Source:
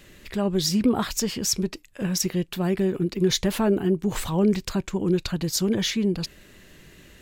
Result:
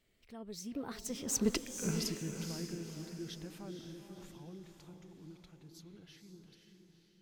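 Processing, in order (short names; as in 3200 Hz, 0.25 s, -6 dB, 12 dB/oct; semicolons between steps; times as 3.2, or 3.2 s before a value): Doppler pass-by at 1.59, 37 m/s, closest 2.2 m; diffused feedback echo 0.5 s, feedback 44%, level -6 dB; gain +3.5 dB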